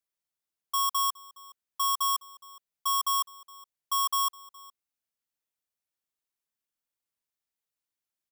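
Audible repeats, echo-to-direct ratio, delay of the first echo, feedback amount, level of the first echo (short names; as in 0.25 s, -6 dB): 1, -22.5 dB, 0.416 s, no steady repeat, -22.5 dB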